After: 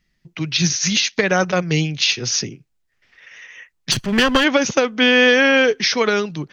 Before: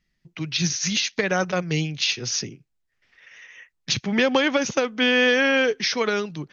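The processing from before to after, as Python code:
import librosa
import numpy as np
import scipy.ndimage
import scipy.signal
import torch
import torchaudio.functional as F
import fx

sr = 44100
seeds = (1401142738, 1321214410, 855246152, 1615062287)

y = fx.lower_of_two(x, sr, delay_ms=0.65, at=(3.91, 4.43), fade=0.02)
y = F.gain(torch.from_numpy(y), 5.5).numpy()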